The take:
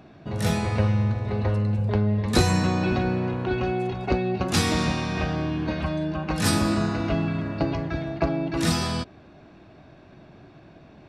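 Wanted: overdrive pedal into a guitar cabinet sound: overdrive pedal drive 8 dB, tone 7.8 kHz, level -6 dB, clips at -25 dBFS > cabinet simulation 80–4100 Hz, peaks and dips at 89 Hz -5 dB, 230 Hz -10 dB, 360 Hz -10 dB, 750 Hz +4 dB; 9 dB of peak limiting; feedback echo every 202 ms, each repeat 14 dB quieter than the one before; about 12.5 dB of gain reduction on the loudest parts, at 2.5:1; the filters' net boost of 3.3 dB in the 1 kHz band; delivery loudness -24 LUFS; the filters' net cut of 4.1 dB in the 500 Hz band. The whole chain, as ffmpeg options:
-filter_complex "[0:a]equalizer=f=500:t=o:g=-4,equalizer=f=1000:t=o:g=3.5,acompressor=threshold=0.0178:ratio=2.5,alimiter=level_in=1.41:limit=0.0631:level=0:latency=1,volume=0.708,aecho=1:1:202|404:0.2|0.0399,asplit=2[s0][s1];[s1]highpass=f=720:p=1,volume=2.51,asoftclip=type=tanh:threshold=0.0562[s2];[s0][s2]amix=inputs=2:normalize=0,lowpass=f=7800:p=1,volume=0.501,highpass=80,equalizer=f=89:t=q:w=4:g=-5,equalizer=f=230:t=q:w=4:g=-10,equalizer=f=360:t=q:w=4:g=-10,equalizer=f=750:t=q:w=4:g=4,lowpass=f=4100:w=0.5412,lowpass=f=4100:w=1.3066,volume=5.01"

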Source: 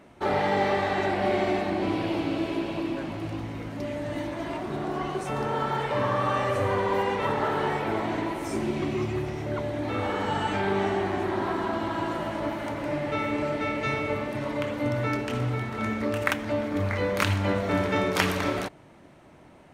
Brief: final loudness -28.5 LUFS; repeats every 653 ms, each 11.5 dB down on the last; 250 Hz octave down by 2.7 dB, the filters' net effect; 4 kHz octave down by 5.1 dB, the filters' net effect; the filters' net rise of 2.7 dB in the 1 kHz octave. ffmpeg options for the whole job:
-af "equalizer=f=250:t=o:g=-4,equalizer=f=1000:t=o:g=4,equalizer=f=4000:t=o:g=-7.5,aecho=1:1:653|1306|1959:0.266|0.0718|0.0194,volume=0.891"

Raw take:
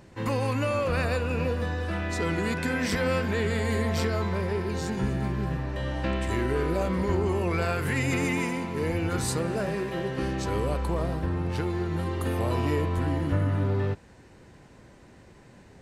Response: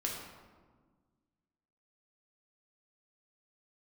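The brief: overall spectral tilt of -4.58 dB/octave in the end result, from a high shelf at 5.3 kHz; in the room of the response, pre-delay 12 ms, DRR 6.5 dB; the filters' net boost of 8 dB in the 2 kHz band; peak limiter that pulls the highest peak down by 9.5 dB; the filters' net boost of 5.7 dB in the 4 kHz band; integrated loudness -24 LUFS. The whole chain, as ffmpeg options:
-filter_complex "[0:a]equalizer=f=2000:t=o:g=9,equalizer=f=4000:t=o:g=6.5,highshelf=f=5300:g=-6,alimiter=limit=0.106:level=0:latency=1,asplit=2[s0][s1];[1:a]atrim=start_sample=2205,adelay=12[s2];[s1][s2]afir=irnorm=-1:irlink=0,volume=0.335[s3];[s0][s3]amix=inputs=2:normalize=0,volume=1.5"

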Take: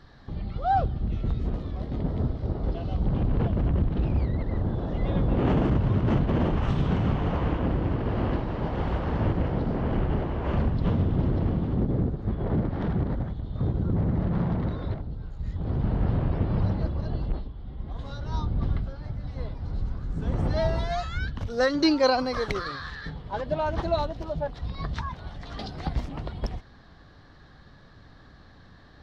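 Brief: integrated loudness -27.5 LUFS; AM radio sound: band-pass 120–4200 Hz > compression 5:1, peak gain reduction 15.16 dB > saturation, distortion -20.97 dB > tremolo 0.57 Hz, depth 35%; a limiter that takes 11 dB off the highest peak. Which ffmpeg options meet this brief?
-af "alimiter=limit=0.0794:level=0:latency=1,highpass=120,lowpass=4200,acompressor=threshold=0.00708:ratio=5,asoftclip=threshold=0.0141,tremolo=f=0.57:d=0.35,volume=11.9"

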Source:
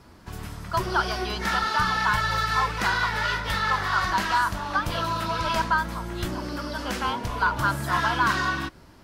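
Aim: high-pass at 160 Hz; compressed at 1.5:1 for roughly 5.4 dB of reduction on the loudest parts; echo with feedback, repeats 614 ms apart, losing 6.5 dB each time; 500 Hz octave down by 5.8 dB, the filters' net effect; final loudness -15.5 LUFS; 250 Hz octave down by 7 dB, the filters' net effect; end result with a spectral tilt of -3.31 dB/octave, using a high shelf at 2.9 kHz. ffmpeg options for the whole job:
-af "highpass=160,equalizer=f=250:t=o:g=-6.5,equalizer=f=500:t=o:g=-6.5,highshelf=f=2900:g=3.5,acompressor=threshold=0.02:ratio=1.5,aecho=1:1:614|1228|1842|2456|3070|3684:0.473|0.222|0.105|0.0491|0.0231|0.0109,volume=4.73"

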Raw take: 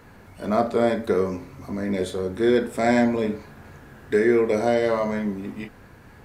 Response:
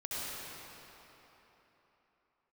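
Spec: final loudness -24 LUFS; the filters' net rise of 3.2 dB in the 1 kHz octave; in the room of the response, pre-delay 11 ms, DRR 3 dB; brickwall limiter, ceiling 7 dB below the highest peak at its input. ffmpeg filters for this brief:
-filter_complex "[0:a]equalizer=f=1000:t=o:g=5,alimiter=limit=0.237:level=0:latency=1,asplit=2[s0][s1];[1:a]atrim=start_sample=2205,adelay=11[s2];[s1][s2]afir=irnorm=-1:irlink=0,volume=0.447[s3];[s0][s3]amix=inputs=2:normalize=0,volume=0.841"

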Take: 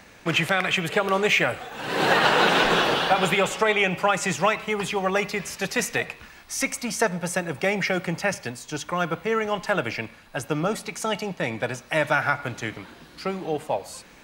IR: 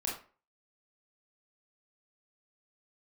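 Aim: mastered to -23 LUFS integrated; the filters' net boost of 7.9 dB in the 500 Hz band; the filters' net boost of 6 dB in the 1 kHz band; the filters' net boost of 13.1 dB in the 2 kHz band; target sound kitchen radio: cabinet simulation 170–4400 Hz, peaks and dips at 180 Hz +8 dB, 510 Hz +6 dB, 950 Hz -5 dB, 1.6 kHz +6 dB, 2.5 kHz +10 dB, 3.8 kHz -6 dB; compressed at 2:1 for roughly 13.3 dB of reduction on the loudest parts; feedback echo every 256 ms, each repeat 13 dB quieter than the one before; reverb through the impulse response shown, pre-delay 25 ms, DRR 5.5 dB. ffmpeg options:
-filter_complex "[0:a]equalizer=f=500:t=o:g=4.5,equalizer=f=1000:t=o:g=5,equalizer=f=2000:t=o:g=7.5,acompressor=threshold=0.0178:ratio=2,aecho=1:1:256|512|768:0.224|0.0493|0.0108,asplit=2[s0][s1];[1:a]atrim=start_sample=2205,adelay=25[s2];[s1][s2]afir=irnorm=-1:irlink=0,volume=0.376[s3];[s0][s3]amix=inputs=2:normalize=0,highpass=170,equalizer=f=180:t=q:w=4:g=8,equalizer=f=510:t=q:w=4:g=6,equalizer=f=950:t=q:w=4:g=-5,equalizer=f=1600:t=q:w=4:g=6,equalizer=f=2500:t=q:w=4:g=10,equalizer=f=3800:t=q:w=4:g=-6,lowpass=f=4400:w=0.5412,lowpass=f=4400:w=1.3066,volume=1.19"

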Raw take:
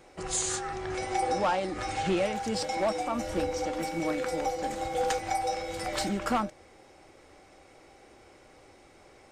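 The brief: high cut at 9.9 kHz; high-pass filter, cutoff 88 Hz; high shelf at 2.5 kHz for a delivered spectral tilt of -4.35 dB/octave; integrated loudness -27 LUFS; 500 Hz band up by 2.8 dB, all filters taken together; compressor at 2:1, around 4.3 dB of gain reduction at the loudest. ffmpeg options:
-af "highpass=88,lowpass=9900,equalizer=f=500:t=o:g=3.5,highshelf=f=2500:g=-5,acompressor=threshold=0.0355:ratio=2,volume=1.78"

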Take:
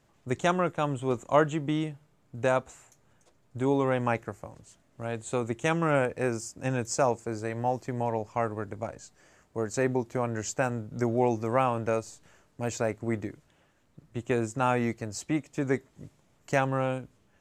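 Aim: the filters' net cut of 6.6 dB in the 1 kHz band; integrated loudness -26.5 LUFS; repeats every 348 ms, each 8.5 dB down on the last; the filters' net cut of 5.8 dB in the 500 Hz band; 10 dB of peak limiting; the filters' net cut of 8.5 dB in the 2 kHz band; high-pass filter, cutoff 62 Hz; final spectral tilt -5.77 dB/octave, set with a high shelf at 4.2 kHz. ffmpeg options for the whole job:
-af "highpass=62,equalizer=f=500:t=o:g=-5.5,equalizer=f=1000:t=o:g=-4.5,equalizer=f=2000:t=o:g=-8.5,highshelf=f=4200:g=-4.5,alimiter=limit=0.0631:level=0:latency=1,aecho=1:1:348|696|1044|1392:0.376|0.143|0.0543|0.0206,volume=2.99"

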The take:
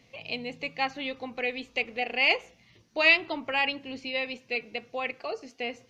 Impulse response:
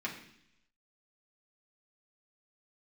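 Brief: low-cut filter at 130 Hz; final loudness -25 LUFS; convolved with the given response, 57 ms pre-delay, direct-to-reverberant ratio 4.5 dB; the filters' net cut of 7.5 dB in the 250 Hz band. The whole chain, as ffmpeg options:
-filter_complex "[0:a]highpass=130,equalizer=f=250:t=o:g=-8.5,asplit=2[s0][s1];[1:a]atrim=start_sample=2205,adelay=57[s2];[s1][s2]afir=irnorm=-1:irlink=0,volume=0.398[s3];[s0][s3]amix=inputs=2:normalize=0,volume=1.33"

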